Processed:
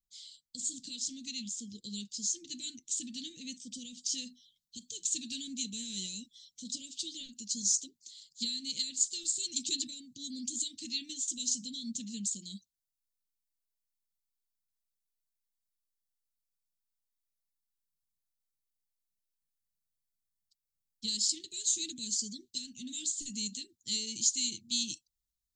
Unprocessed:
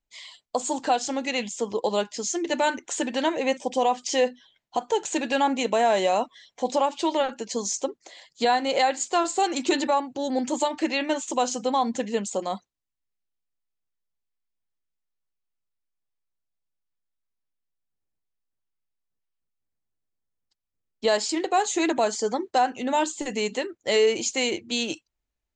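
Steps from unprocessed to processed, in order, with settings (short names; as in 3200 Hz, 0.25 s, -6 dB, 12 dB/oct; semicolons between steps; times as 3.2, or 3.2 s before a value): Chebyshev band-stop 210–3800 Hz, order 3; high shelf 4000 Hz +7 dB, from 4.18 s +12 dB; gain -7 dB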